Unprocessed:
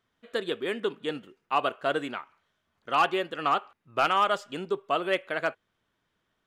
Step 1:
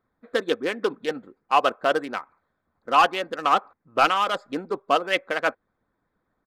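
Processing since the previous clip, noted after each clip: Wiener smoothing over 15 samples; comb 3.9 ms, depth 38%; harmonic-percussive split harmonic -10 dB; gain +8 dB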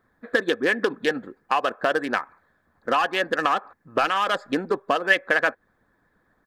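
in parallel at +3 dB: limiter -15 dBFS, peak gain reduction 9 dB; on the sum: compressor 6:1, threshold -19 dBFS, peak gain reduction 10.5 dB; small resonant body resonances 1700 Hz, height 15 dB, ringing for 35 ms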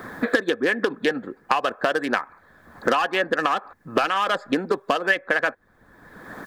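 three-band squash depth 100%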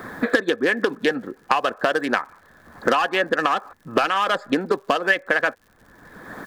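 crackle 140/s -45 dBFS; gain +1.5 dB

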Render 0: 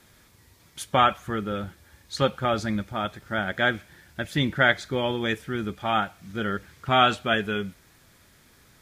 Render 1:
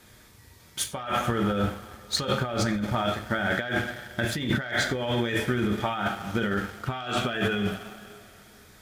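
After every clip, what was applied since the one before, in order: two-slope reverb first 0.45 s, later 2.8 s, from -19 dB, DRR 3.5 dB; sample leveller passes 1; negative-ratio compressor -26 dBFS, ratio -1; gain -1.5 dB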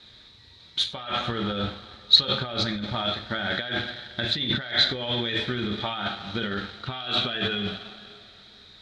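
synth low-pass 3900 Hz, resonance Q 13; gain -3.5 dB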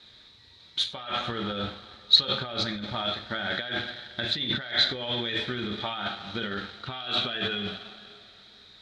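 low shelf 210 Hz -4.5 dB; gain -2 dB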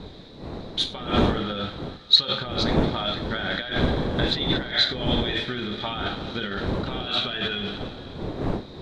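wind noise 390 Hz -31 dBFS; gain +2 dB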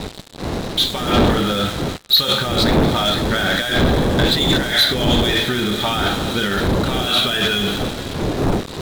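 sample leveller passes 3; in parallel at -4.5 dB: fuzz box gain 32 dB, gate -39 dBFS; on the sum: gain -6 dB

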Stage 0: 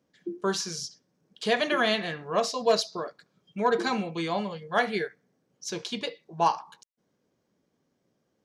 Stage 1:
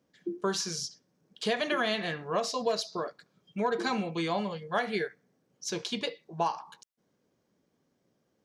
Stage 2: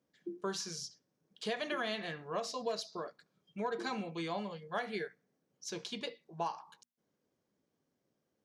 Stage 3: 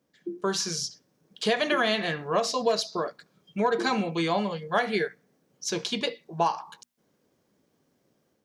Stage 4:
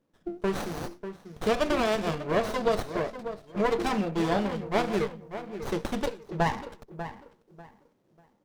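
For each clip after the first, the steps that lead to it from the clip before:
compressor 6:1, threshold -25 dBFS, peak gain reduction 8.5 dB
notches 60/120/180/240 Hz; gain -7.5 dB
AGC gain up to 5 dB; gain +7 dB
darkening echo 0.593 s, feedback 30%, low-pass 1000 Hz, level -9 dB; running maximum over 17 samples

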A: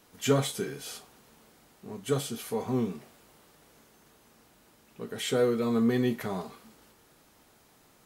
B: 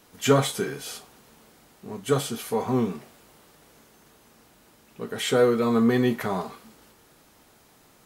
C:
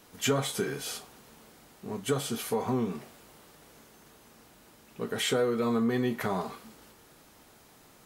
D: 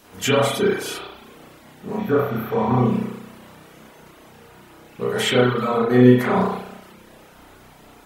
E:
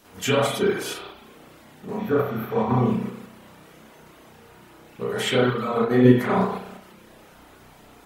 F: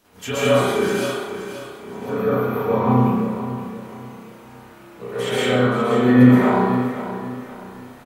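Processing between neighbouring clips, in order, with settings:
dynamic EQ 1100 Hz, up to +5 dB, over -46 dBFS, Q 0.78; gain +4 dB
compressor 3:1, threshold -26 dBFS, peak gain reduction 10 dB
spring tank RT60 1.1 s, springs 32 ms, chirp 60 ms, DRR -7.5 dB; reverb removal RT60 0.62 s; spectral repair 2.01–2.71, 1800–12000 Hz after; gain +4.5 dB
in parallel at +0.5 dB: level quantiser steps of 10 dB; on the sum: flange 1.8 Hz, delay 8.7 ms, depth 8.9 ms, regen -65%; gain -3 dB
feedback echo 0.525 s, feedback 34%, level -11 dB; plate-style reverb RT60 1.2 s, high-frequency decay 0.5×, pre-delay 0.11 s, DRR -8.5 dB; gain -5.5 dB

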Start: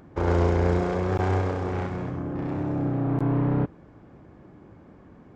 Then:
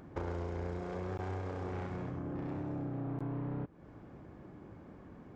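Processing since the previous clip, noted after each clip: compressor 6:1, threshold -34 dBFS, peak gain reduction 15.5 dB; gain -2.5 dB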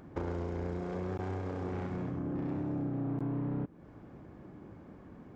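dynamic EQ 230 Hz, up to +6 dB, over -53 dBFS, Q 1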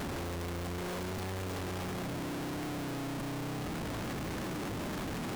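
infinite clipping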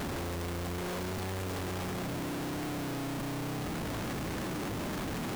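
modulation noise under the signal 19 dB; gain +1.5 dB

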